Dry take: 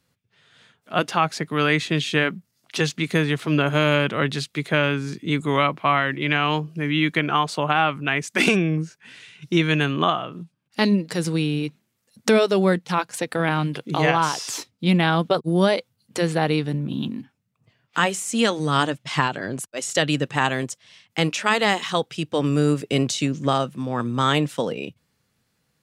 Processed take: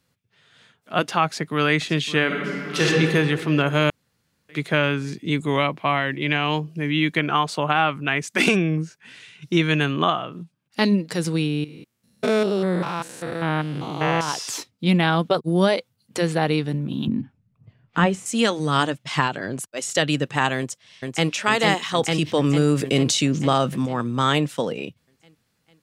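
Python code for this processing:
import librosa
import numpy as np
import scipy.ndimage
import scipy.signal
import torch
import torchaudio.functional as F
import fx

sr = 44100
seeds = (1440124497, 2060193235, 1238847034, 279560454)

y = fx.echo_throw(x, sr, start_s=1.25, length_s=0.51, ms=560, feedback_pct=65, wet_db=-14.5)
y = fx.reverb_throw(y, sr, start_s=2.26, length_s=0.6, rt60_s=2.4, drr_db=-5.5)
y = fx.peak_eq(y, sr, hz=1300.0, db=-6.0, octaves=0.47, at=(5.02, 7.18))
y = fx.spec_steps(y, sr, hold_ms=200, at=(11.47, 14.27), fade=0.02)
y = fx.riaa(y, sr, side='playback', at=(17.07, 18.26))
y = fx.echo_throw(y, sr, start_s=20.57, length_s=0.74, ms=450, feedback_pct=65, wet_db=-3.5)
y = fx.env_flatten(y, sr, amount_pct=50, at=(21.98, 23.86))
y = fx.edit(y, sr, fx.room_tone_fill(start_s=3.9, length_s=0.59), tone=tone)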